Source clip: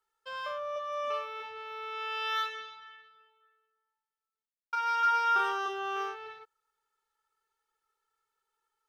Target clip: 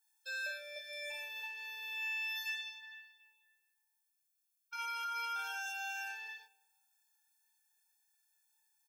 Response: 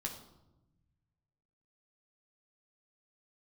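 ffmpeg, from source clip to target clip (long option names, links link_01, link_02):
-filter_complex "[0:a]highpass=470,aderivative,alimiter=level_in=19dB:limit=-24dB:level=0:latency=1:release=17,volume=-19dB,asplit=2[link_01][link_02];[link_02]adelay=28,volume=-5dB[link_03];[link_01][link_03]amix=inputs=2:normalize=0,asplit=2[link_04][link_05];[1:a]atrim=start_sample=2205,asetrate=27342,aresample=44100[link_06];[link_05][link_06]afir=irnorm=-1:irlink=0,volume=-16dB[link_07];[link_04][link_07]amix=inputs=2:normalize=0,afftfilt=real='re*eq(mod(floor(b*sr/1024/460),2),1)':imag='im*eq(mod(floor(b*sr/1024/460),2),1)':win_size=1024:overlap=0.75,volume=12.5dB"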